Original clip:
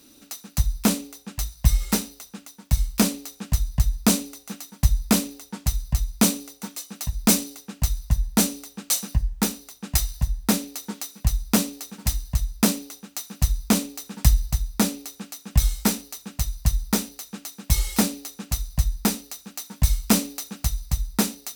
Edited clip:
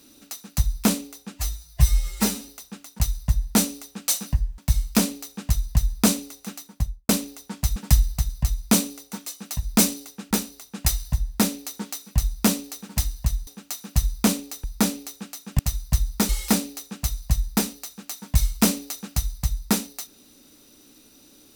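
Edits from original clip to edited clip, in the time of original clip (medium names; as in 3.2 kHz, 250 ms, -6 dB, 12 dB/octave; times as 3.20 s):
1.34–2.10 s: stretch 1.5×
4.59–5.12 s: studio fade out
7.81–9.40 s: move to 2.61 s
12.56–12.93 s: delete
14.10–14.63 s: move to 5.79 s
15.58–16.32 s: delete
17.02–17.77 s: delete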